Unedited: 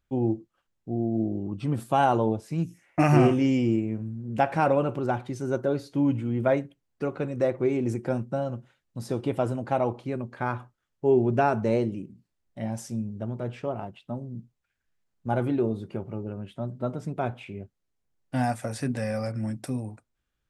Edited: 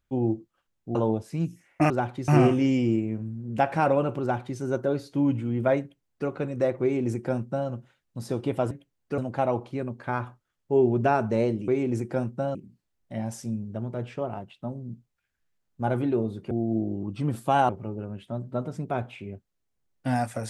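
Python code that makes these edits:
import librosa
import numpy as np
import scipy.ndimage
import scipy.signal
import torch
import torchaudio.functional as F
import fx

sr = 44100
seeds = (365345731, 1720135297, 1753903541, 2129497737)

y = fx.edit(x, sr, fx.move(start_s=0.95, length_s=1.18, to_s=15.97),
    fx.duplicate(start_s=5.01, length_s=0.38, to_s=3.08),
    fx.duplicate(start_s=6.61, length_s=0.47, to_s=9.51),
    fx.duplicate(start_s=7.62, length_s=0.87, to_s=12.01), tone=tone)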